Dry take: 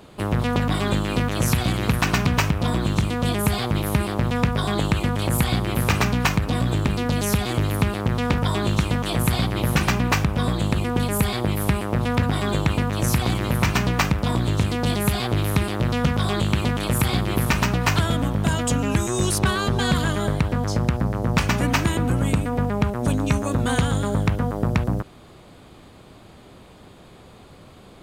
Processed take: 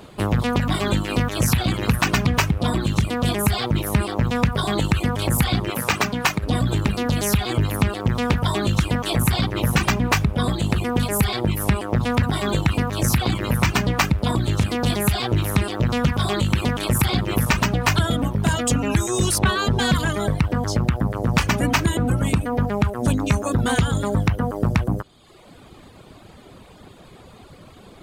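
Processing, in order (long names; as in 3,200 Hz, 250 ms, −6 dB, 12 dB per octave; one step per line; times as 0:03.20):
0:05.70–0:06.43: high-pass filter 270 Hz 6 dB per octave
in parallel at −5 dB: gain into a clipping stage and back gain 18.5 dB
on the sum: reverb reduction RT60 0.96 s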